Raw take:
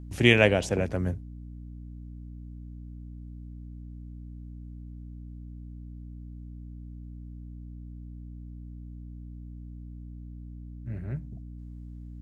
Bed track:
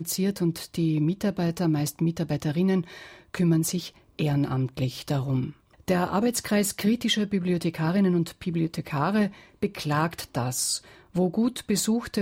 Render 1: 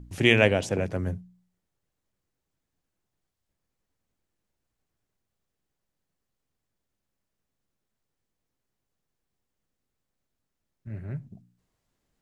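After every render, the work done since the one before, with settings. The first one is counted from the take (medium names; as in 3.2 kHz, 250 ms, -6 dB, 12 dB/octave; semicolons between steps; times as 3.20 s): de-hum 60 Hz, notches 5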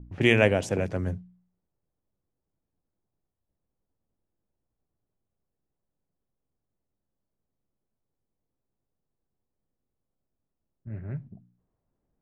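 level-controlled noise filter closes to 850 Hz, open at -23 dBFS; dynamic bell 3.8 kHz, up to -6 dB, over -39 dBFS, Q 1.3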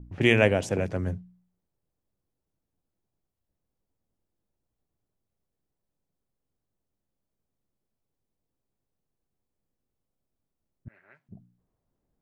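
10.88–11.29 s: high-pass 1.2 kHz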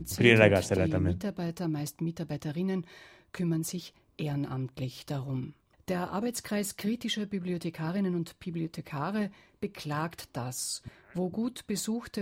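add bed track -8 dB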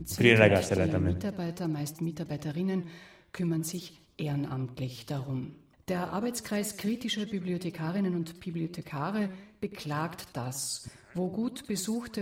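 modulated delay 85 ms, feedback 42%, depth 163 cents, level -14 dB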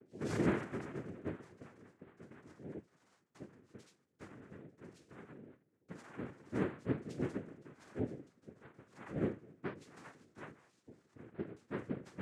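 pitch-class resonator G#, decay 0.34 s; noise-vocoded speech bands 3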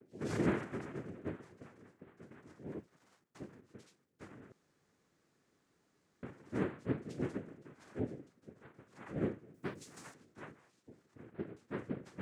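2.66–3.61 s: waveshaping leveller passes 1; 4.52–6.23 s: room tone; 9.54–10.14 s: tone controls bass +2 dB, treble +13 dB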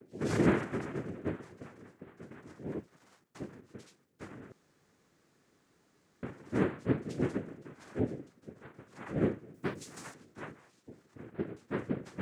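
trim +6 dB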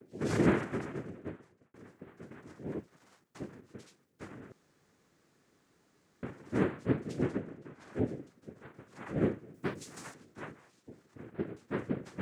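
0.77–1.74 s: fade out; 7.23–7.93 s: treble shelf 5 kHz -7 dB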